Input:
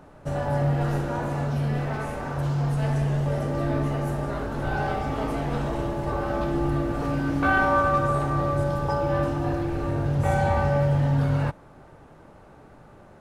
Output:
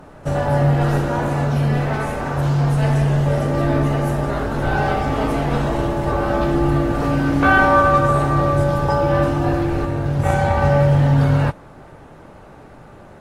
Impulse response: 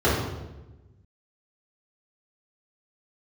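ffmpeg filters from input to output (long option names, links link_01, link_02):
-filter_complex "[0:a]asettb=1/sr,asplit=3[link_01][link_02][link_03];[link_01]atrim=end=9.854[link_04];[link_02]atrim=start=9.85:end=10.62,asetpts=PTS-STARTPTS,afade=type=in:duration=0.004:curve=qsin,afade=type=out:start_time=0.766:duration=0.004:curve=qsin,aeval=exprs='0.299*(cos(1*acos(clip(val(0)/0.299,-1,1)))-cos(1*PI/2))+0.0376*(cos(3*acos(clip(val(0)/0.299,-1,1)))-cos(3*PI/2))':channel_layout=same[link_05];[link_03]atrim=start=10.616[link_06];[link_04][link_05]acrossfade=duration=0.004:curve1=hsin:curve2=qsin[link_07];[link_07][link_06]acrossfade=duration=0.004:curve1=qsin:curve2=hsin,volume=7.5dB" -ar 44100 -c:a aac -b:a 48k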